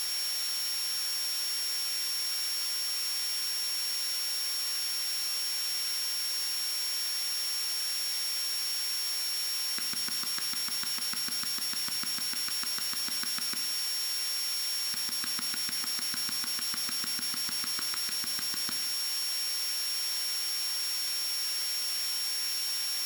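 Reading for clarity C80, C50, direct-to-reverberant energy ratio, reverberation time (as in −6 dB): 12.5 dB, 9.5 dB, 6.5 dB, 0.95 s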